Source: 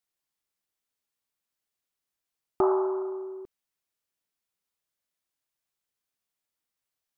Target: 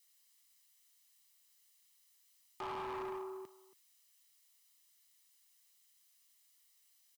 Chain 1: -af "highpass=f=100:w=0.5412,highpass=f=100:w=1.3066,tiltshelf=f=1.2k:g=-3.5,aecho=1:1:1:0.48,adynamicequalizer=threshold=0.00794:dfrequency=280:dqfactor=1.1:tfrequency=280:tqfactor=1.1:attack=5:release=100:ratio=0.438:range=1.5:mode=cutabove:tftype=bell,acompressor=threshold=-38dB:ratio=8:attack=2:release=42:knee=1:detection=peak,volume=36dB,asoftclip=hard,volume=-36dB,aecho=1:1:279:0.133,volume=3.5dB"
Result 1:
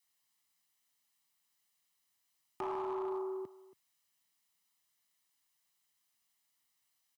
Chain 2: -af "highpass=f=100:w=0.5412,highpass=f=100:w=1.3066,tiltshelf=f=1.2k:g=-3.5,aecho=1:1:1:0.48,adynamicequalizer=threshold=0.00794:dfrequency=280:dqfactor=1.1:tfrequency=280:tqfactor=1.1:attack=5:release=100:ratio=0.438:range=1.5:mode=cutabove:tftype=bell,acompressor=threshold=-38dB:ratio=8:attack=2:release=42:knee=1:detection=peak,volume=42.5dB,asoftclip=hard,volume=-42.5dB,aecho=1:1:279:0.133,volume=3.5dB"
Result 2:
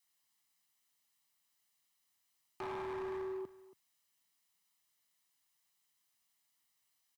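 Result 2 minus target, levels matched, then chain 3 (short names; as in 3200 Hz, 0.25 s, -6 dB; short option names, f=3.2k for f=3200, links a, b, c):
1000 Hz band -4.0 dB
-af "highpass=f=100:w=0.5412,highpass=f=100:w=1.3066,tiltshelf=f=1.2k:g=-13,aecho=1:1:1:0.48,adynamicequalizer=threshold=0.00794:dfrequency=280:dqfactor=1.1:tfrequency=280:tqfactor=1.1:attack=5:release=100:ratio=0.438:range=1.5:mode=cutabove:tftype=bell,acompressor=threshold=-38dB:ratio=8:attack=2:release=42:knee=1:detection=peak,volume=42.5dB,asoftclip=hard,volume=-42.5dB,aecho=1:1:279:0.133,volume=3.5dB"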